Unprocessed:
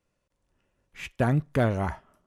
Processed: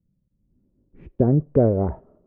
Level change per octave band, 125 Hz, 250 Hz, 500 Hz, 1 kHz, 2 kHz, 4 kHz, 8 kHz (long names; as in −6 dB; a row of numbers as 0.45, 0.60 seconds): +5.0 dB, +7.0 dB, +8.0 dB, −2.0 dB, below −15 dB, below −30 dB, below −30 dB